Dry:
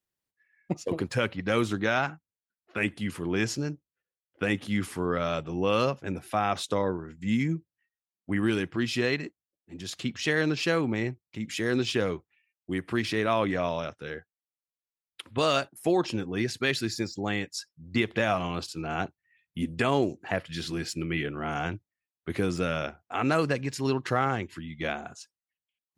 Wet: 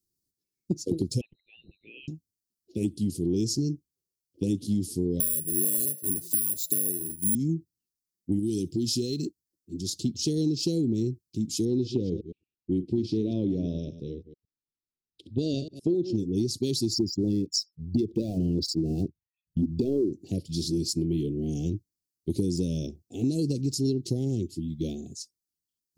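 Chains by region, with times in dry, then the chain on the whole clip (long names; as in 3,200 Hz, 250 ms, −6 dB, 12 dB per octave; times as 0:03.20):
0:01.21–0:02.08: spectral envelope exaggerated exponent 2 + elliptic high-pass filter 980 Hz + voice inversion scrambler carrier 4,000 Hz
0:05.20–0:07.35: low-shelf EQ 190 Hz −8 dB + hum removal 170.2 Hz, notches 6 + bad sample-rate conversion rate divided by 4×, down filtered, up zero stuff
0:08.39–0:09.26: high-shelf EQ 3,700 Hz +8.5 dB + downward compressor 3 to 1, threshold −28 dBFS
0:11.65–0:16.16: delay that plays each chunk backwards 112 ms, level −12 dB + low-pass filter 3,000 Hz
0:16.94–0:20.13: spectral envelope exaggerated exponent 2 + leveller curve on the samples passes 1
whole clip: Chebyshev band-stop filter 360–4,700 Hz, order 3; downward compressor, threshold −30 dBFS; level +7.5 dB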